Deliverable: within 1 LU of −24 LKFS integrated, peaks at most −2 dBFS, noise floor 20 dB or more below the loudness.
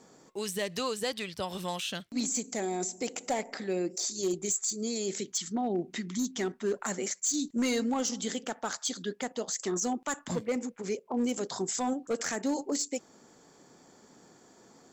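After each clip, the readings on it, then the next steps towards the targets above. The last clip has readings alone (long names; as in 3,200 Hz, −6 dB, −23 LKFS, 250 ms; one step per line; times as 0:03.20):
share of clipped samples 0.7%; peaks flattened at −23.5 dBFS; integrated loudness −32.5 LKFS; sample peak −23.5 dBFS; target loudness −24.0 LKFS
→ clipped peaks rebuilt −23.5 dBFS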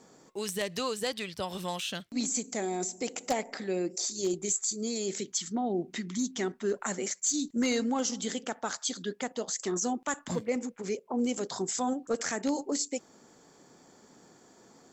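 share of clipped samples 0.0%; integrated loudness −32.0 LKFS; sample peak −14.5 dBFS; target loudness −24.0 LKFS
→ level +8 dB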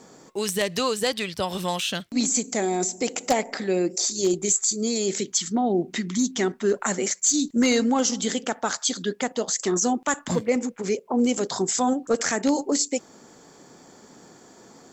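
integrated loudness −24.0 LKFS; sample peak −6.5 dBFS; background noise floor −52 dBFS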